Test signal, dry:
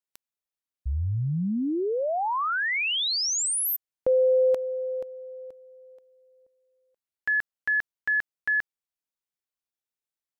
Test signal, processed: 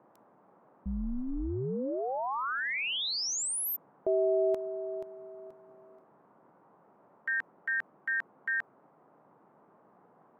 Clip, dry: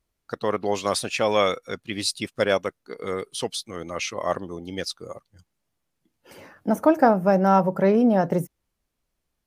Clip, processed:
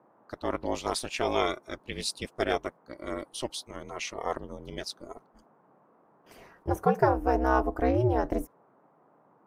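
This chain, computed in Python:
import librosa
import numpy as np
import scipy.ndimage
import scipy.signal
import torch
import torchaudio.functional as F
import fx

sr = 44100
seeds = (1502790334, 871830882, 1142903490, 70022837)

y = x * np.sin(2.0 * np.pi * 130.0 * np.arange(len(x)) / sr)
y = fx.gate_hold(y, sr, open_db=-48.0, close_db=-55.0, hold_ms=31.0, range_db=-13, attack_ms=0.84, release_ms=39.0)
y = fx.dmg_noise_band(y, sr, seeds[0], low_hz=140.0, high_hz=1100.0, level_db=-59.0)
y = y * librosa.db_to_amplitude(-3.5)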